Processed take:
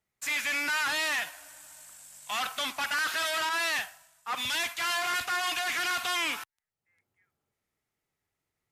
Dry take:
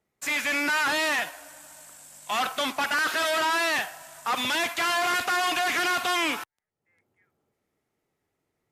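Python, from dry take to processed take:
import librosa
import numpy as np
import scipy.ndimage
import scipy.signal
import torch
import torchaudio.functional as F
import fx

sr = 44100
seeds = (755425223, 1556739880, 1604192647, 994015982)

y = fx.peak_eq(x, sr, hz=360.0, db=-10.0, octaves=2.8)
y = fx.band_widen(y, sr, depth_pct=100, at=(3.49, 5.91))
y = F.gain(torch.from_numpy(y), -1.5).numpy()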